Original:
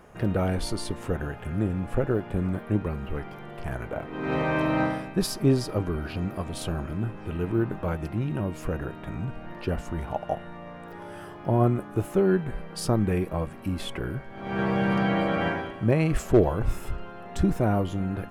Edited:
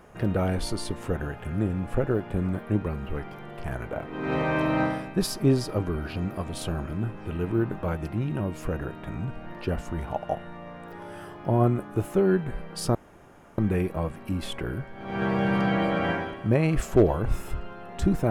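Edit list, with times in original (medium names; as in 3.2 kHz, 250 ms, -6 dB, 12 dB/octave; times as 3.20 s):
12.95 s: insert room tone 0.63 s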